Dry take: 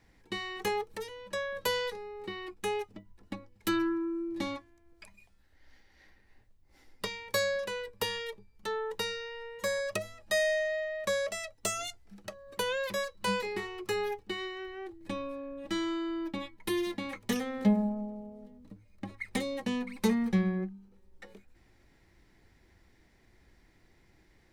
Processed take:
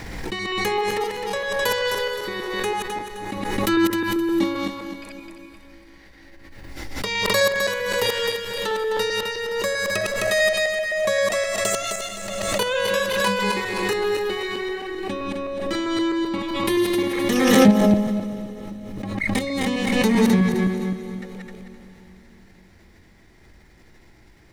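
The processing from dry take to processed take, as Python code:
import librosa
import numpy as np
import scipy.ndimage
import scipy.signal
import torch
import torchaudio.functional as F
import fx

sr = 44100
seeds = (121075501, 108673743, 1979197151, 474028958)

y = fx.reverse_delay_fb(x, sr, ms=130, feedback_pct=58, wet_db=-0.5)
y = fx.echo_diffused(y, sr, ms=462, feedback_pct=43, wet_db=-15.5)
y = fx.pre_swell(y, sr, db_per_s=30.0)
y = F.gain(torch.from_numpy(y), 6.5).numpy()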